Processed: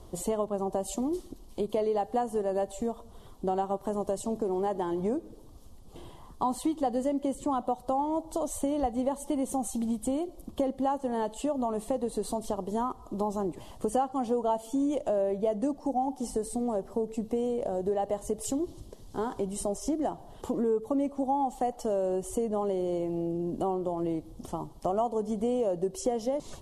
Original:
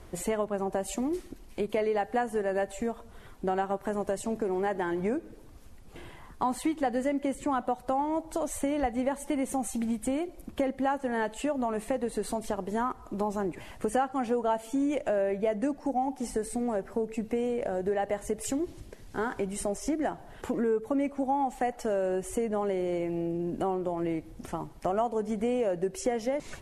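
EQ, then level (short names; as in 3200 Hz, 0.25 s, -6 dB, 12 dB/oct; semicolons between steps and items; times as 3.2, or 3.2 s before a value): band shelf 1900 Hz -13 dB 1.1 oct; 0.0 dB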